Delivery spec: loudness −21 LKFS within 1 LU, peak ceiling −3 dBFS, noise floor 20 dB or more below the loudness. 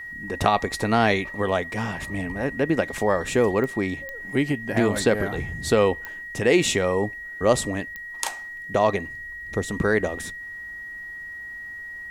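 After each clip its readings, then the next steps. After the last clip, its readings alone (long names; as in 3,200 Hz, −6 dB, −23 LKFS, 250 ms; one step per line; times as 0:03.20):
number of clicks 4; interfering tone 1,900 Hz; level of the tone −34 dBFS; integrated loudness −24.0 LKFS; sample peak −3.5 dBFS; target loudness −21.0 LKFS
→ click removal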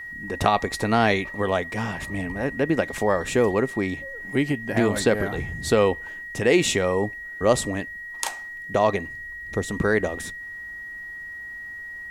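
number of clicks 0; interfering tone 1,900 Hz; level of the tone −34 dBFS
→ notch filter 1,900 Hz, Q 30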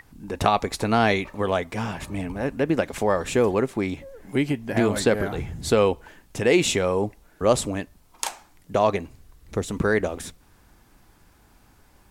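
interfering tone none found; integrated loudness −24.0 LKFS; sample peak −3.0 dBFS; target loudness −21.0 LKFS
→ level +3 dB
brickwall limiter −3 dBFS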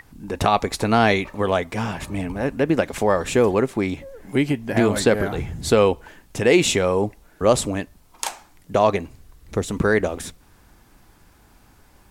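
integrated loudness −21.5 LKFS; sample peak −3.0 dBFS; background noise floor −54 dBFS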